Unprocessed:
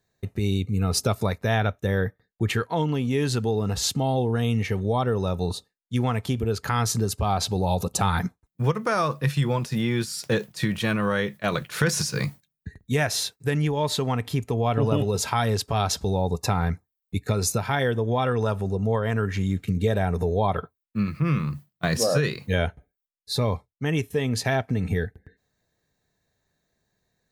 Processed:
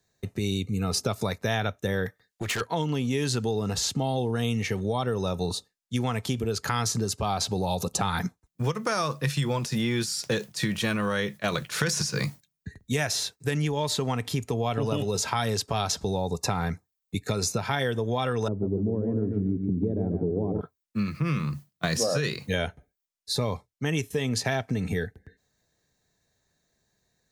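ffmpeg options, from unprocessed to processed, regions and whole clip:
-filter_complex "[0:a]asettb=1/sr,asplit=3[s0][s1][s2];[s0]atrim=end=2.064[s3];[s1]atrim=start=2.06:end=2.61,asetpts=PTS-STARTPTS,afade=t=in:d=0.004:c=qsin,afade=t=out:st=0.546:d=0.004:c=qsin,tiltshelf=f=670:g=-5.5,asoftclip=type=hard:threshold=0.0473[s4];[s2]atrim=start=2.606[s5];[s3][s4]acrossfade=d=0.004:c1=hsin:c2=qsin[s6];[s6][s5]acrossfade=d=0.004:c1=qsin:c2=hsin,asettb=1/sr,asplit=3[s7][s8][s9];[s7]atrim=end=18.484[s10];[s8]atrim=start=18.48:end=20.61,asetpts=PTS-STARTPTS,afade=t=in:d=0.004:c=qsin,afade=t=out:st=2.126:d=0.004:c=qsin,lowpass=f=320:t=q:w=3.3,aecho=1:1:144|288|432|576:0.501|0.165|0.0546|0.018,atrim=end_sample=93933[s11];[s9]atrim=start=20.606[s12];[s10][s11]acrossfade=d=0.004:c1=hsin:c2=qsin[s13];[s13][s12]acrossfade=d=0.004:c1=qsin:c2=hsin,equalizer=f=6300:t=o:w=1.3:g=6,acrossover=split=110|2500|6200[s14][s15][s16][s17];[s14]acompressor=threshold=0.00794:ratio=4[s18];[s15]acompressor=threshold=0.0631:ratio=4[s19];[s16]acompressor=threshold=0.0251:ratio=4[s20];[s17]acompressor=threshold=0.0178:ratio=4[s21];[s18][s19][s20][s21]amix=inputs=4:normalize=0"

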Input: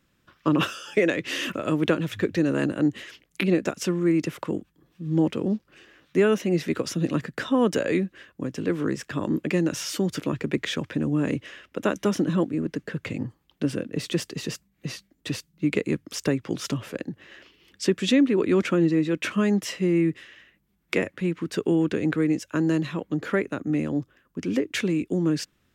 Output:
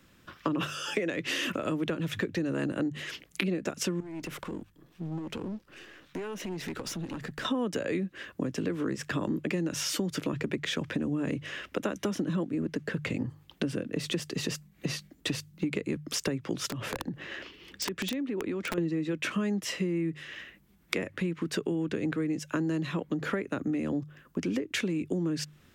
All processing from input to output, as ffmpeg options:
-filter_complex "[0:a]asettb=1/sr,asplit=3[s0][s1][s2];[s0]atrim=end=4.004[s3];[s1]atrim=start=4:end=7.45,asetpts=PTS-STARTPTS,afade=t=in:d=0.004:c=qsin,afade=t=out:st=3.446:d=0.004:c=qsin,aeval=exprs='if(lt(val(0),0),0.447*val(0),val(0))':c=same,acompressor=threshold=0.0282:ratio=12:attack=3.2:release=140:knee=1:detection=peak,aeval=exprs='(tanh(79.4*val(0)+0.5)-tanh(0.5))/79.4':c=same[s4];[s2]atrim=start=7.446[s5];[s3][s4]acrossfade=d=0.004:c1=hsin:c2=qsin[s6];[s6][s5]acrossfade=d=0.004:c1=qsin:c2=hsin,asettb=1/sr,asplit=3[s7][s8][s9];[s7]atrim=end=16.684[s10];[s8]atrim=start=16.68:end=18.78,asetpts=PTS-STARTPTS,afade=t=in:d=0.004:c=qsin,afade=t=out:st=2.096:d=0.004:c=qsin,highshelf=f=5600:g=-6.5,acompressor=threshold=0.0178:ratio=6:attack=3.2:release=140:knee=1:detection=peak,aeval=exprs='(mod(28.2*val(0)+1,2)-1)/28.2':c=same[s11];[s9]atrim=start=18.776[s12];[s10][s11]acrossfade=d=0.004:c1=hsin:c2=qsin[s13];[s13][s12]acrossfade=d=0.004:c1=qsin:c2=hsin,acrossover=split=180[s14][s15];[s15]acompressor=threshold=0.0501:ratio=2[s16];[s14][s16]amix=inputs=2:normalize=0,bandreject=f=50:t=h:w=6,bandreject=f=100:t=h:w=6,bandreject=f=150:t=h:w=6,acompressor=threshold=0.0126:ratio=4,volume=2.51"

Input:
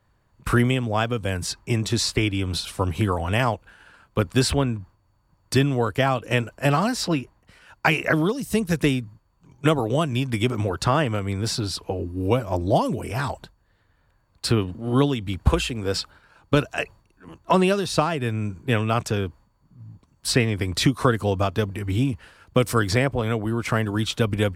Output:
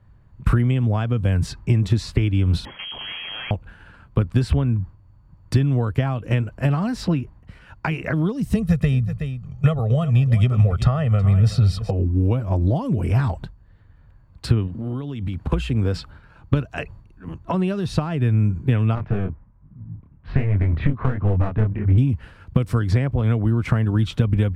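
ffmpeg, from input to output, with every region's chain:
-filter_complex "[0:a]asettb=1/sr,asplit=3[s0][s1][s2];[s0]atrim=end=2.654[s3];[s1]atrim=start=2.65:end=3.51,asetpts=PTS-STARTPTS,afade=t=in:d=0.004:c=qsin,afade=t=out:st=0.856:d=0.004:c=qsin,aeval=exprs='(tanh(70.8*val(0)+0.45)-tanh(0.45))/70.8':c=same,acontrast=30,lowpass=f=2800:t=q:w=0.5098,lowpass=f=2800:t=q:w=0.6013,lowpass=f=2800:t=q:w=0.9,lowpass=f=2800:t=q:w=2.563,afreqshift=-3300[s4];[s2]atrim=start=3.506[s5];[s3][s4]acrossfade=d=0.004:c1=hsin:c2=qsin[s6];[s6][s5]acrossfade=d=0.004:c1=qsin:c2=hsin,asettb=1/sr,asplit=3[s7][s8][s9];[s7]atrim=end=8.554[s10];[s8]atrim=start=8.55:end=11.91,asetpts=PTS-STARTPTS,afade=t=in:d=0.004:c=qsin,afade=t=out:st=3.356:d=0.004:c=qsin,aecho=1:1:1.6:0.91,atrim=end_sample=148176,aecho=1:1:372:0.133,atrim=end_sample=148176[s11];[s9]atrim=start=11.906[s12];[s10][s11]acrossfade=d=0.004:c1=hsin:c2=qsin[s13];[s13][s12]acrossfade=d=0.004:c1=qsin:c2=hsin,asettb=1/sr,asplit=3[s14][s15][s16];[s14]atrim=end=14.674[s17];[s15]atrim=start=14.67:end=15.52,asetpts=PTS-STARTPTS,afade=t=in:d=0.004:c=qsin,afade=t=out:st=0.846:d=0.004:c=qsin,lowshelf=f=110:g=-9,acompressor=threshold=0.0224:ratio=16:attack=3.2:release=140:knee=1:detection=peak[s18];[s16]atrim=start=15.516[s19];[s17][s18]acrossfade=d=0.004:c1=hsin:c2=qsin[s20];[s20][s19]acrossfade=d=0.004:c1=qsin:c2=hsin,asettb=1/sr,asplit=3[s21][s22][s23];[s21]atrim=end=18.954[s24];[s22]atrim=start=18.95:end=21.98,asetpts=PTS-STARTPTS,afade=t=in:d=0.004:c=qsin,afade=t=out:st=3.026:d=0.004:c=qsin,lowpass=f=2300:w=0.5412,lowpass=f=2300:w=1.3066,aeval=exprs='clip(val(0),-1,0.0708)':c=same,flanger=delay=20:depth=7.9:speed=1.3[s25];[s23]atrim=start=21.976[s26];[s24][s25]acrossfade=d=0.004:c1=hsin:c2=qsin[s27];[s27][s26]acrossfade=d=0.004:c1=qsin:c2=hsin,acompressor=threshold=0.0501:ratio=6,bass=f=250:g=13,treble=f=4000:g=-10,volume=1.26"

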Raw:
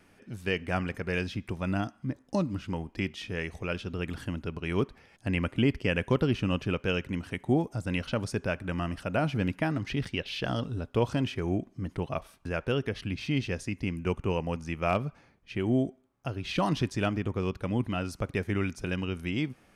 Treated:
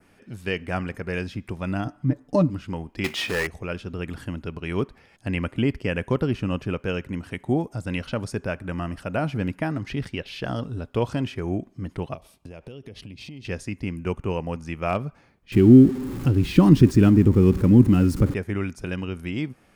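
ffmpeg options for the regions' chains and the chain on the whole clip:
-filter_complex "[0:a]asettb=1/sr,asplit=3[s0][s1][s2];[s0]atrim=end=1.854[s3];[s1]atrim=start=1.85:end=2.5,asetpts=PTS-STARTPTS,afade=t=in:d=0.004:c=qsin,afade=t=out:st=0.646:d=0.004:c=qsin,tiltshelf=f=1400:g=4.5,aecho=1:1:6.8:0.84,atrim=end_sample=28665[s4];[s2]atrim=start=2.496[s5];[s3][s4]acrossfade=d=0.004:c1=hsin:c2=qsin[s6];[s6][s5]acrossfade=d=0.004:c1=qsin:c2=hsin,asettb=1/sr,asplit=3[s7][s8][s9];[s7]atrim=end=3.044[s10];[s8]atrim=start=3.04:end=3.47,asetpts=PTS-STARTPTS,afade=t=in:d=0.004:c=qsin,afade=t=out:st=0.426:d=0.004:c=qsin,acrusher=bits=3:mode=log:mix=0:aa=0.000001,asplit=2[s11][s12];[s12]highpass=f=720:p=1,volume=12.6,asoftclip=type=tanh:threshold=0.158[s13];[s11][s13]amix=inputs=2:normalize=0,lowpass=f=5100:p=1,volume=0.501[s14];[s9]atrim=start=3.466[s15];[s10][s14]acrossfade=d=0.004:c1=hsin:c2=qsin[s16];[s16][s15]acrossfade=d=0.004:c1=qsin:c2=hsin,asettb=1/sr,asplit=3[s17][s18][s19];[s17]atrim=end=12.144[s20];[s18]atrim=start=12.14:end=13.45,asetpts=PTS-STARTPTS,afade=t=in:d=0.004:c=qsin,afade=t=out:st=1.306:d=0.004:c=qsin,highpass=41,equalizer=f=1500:t=o:w=1:g=-11.5,acompressor=threshold=0.0126:ratio=12:attack=3.2:release=140:knee=1:detection=peak[s21];[s19]atrim=start=13.446[s22];[s20][s21]acrossfade=d=0.004:c1=hsin:c2=qsin[s23];[s23][s22]acrossfade=d=0.004:c1=qsin:c2=hsin,asettb=1/sr,asplit=3[s24][s25][s26];[s24]atrim=end=15.524[s27];[s25]atrim=start=15.52:end=18.34,asetpts=PTS-STARTPTS,afade=t=in:d=0.004:c=qsin,afade=t=out:st=2.816:d=0.004:c=qsin,aeval=exprs='val(0)+0.5*0.015*sgn(val(0))':c=same,asuperstop=centerf=660:order=4:qfactor=7.1,lowshelf=f=450:t=q:w=1.5:g=10.5[s28];[s26]atrim=start=18.336[s29];[s27][s28]acrossfade=d=0.004:c1=hsin:c2=qsin[s30];[s30][s29]acrossfade=d=0.004:c1=qsin:c2=hsin,bandreject=f=6000:w=22,adynamicequalizer=threshold=0.00316:dfrequency=3400:dqfactor=1.1:tfrequency=3400:tqfactor=1.1:attack=5:release=100:ratio=0.375:range=3:mode=cutabove:tftype=bell,volume=1.33"

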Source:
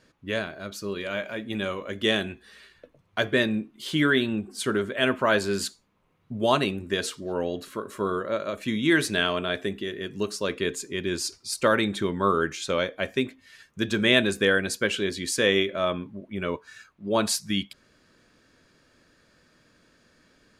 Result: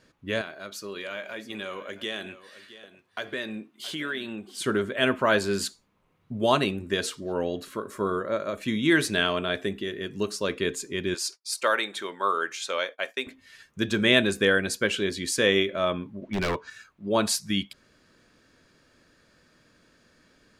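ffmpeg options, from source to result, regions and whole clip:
-filter_complex "[0:a]asettb=1/sr,asplit=3[s0][s1][s2];[s0]atrim=end=0.414[s3];[s1]atrim=start=0.41:end=4.62,asetpts=PTS-STARTPTS,afade=t=in:d=0.004:c=qsin,afade=t=out:st=4.206:d=0.004:c=qsin,highpass=f=470:p=1,acompressor=threshold=0.0282:ratio=2.5:attack=3.2:release=140:knee=1:detection=peak,aecho=1:1:670:0.168,atrim=end_sample=185661[s4];[s2]atrim=start=4.616[s5];[s3][s4]acrossfade=d=0.004:c1=hsin:c2=qsin[s6];[s6][s5]acrossfade=d=0.004:c1=qsin:c2=hsin,asettb=1/sr,asplit=3[s7][s8][s9];[s7]atrim=end=7.884[s10];[s8]atrim=start=7.88:end=8.56,asetpts=PTS-STARTPTS,afade=t=in:d=0.004:c=qsin,afade=t=out:st=0.676:d=0.004:c=qsin,equalizer=f=2900:w=3.5:g=-6.5,bandreject=f=4000:w=16[s11];[s9]atrim=start=8.556[s12];[s10][s11]acrossfade=d=0.004:c1=hsin:c2=qsin[s13];[s13][s12]acrossfade=d=0.004:c1=qsin:c2=hsin,asettb=1/sr,asplit=3[s14][s15][s16];[s14]atrim=end=11.144[s17];[s15]atrim=start=11.14:end=13.27,asetpts=PTS-STARTPTS,afade=t=in:d=0.004:c=qsin,afade=t=out:st=2.126:d=0.004:c=qsin,highpass=610,agate=range=0.0224:threshold=0.00708:ratio=3:release=100:detection=peak[s18];[s16]atrim=start=13.266[s19];[s17][s18]acrossfade=d=0.004:c1=hsin:c2=qsin[s20];[s20][s19]acrossfade=d=0.004:c1=qsin:c2=hsin,asettb=1/sr,asplit=3[s21][s22][s23];[s21]atrim=end=16.224[s24];[s22]atrim=start=16.22:end=16.7,asetpts=PTS-STARTPTS,afade=t=in:d=0.004:c=qsin,afade=t=out:st=0.476:d=0.004:c=qsin,lowpass=f=7000:w=0.5412,lowpass=f=7000:w=1.3066,aeval=exprs='0.0501*(abs(mod(val(0)/0.0501+3,4)-2)-1)':c=same,acontrast=47[s25];[s23]atrim=start=16.696[s26];[s24][s25]acrossfade=d=0.004:c1=hsin:c2=qsin[s27];[s27][s26]acrossfade=d=0.004:c1=qsin:c2=hsin"

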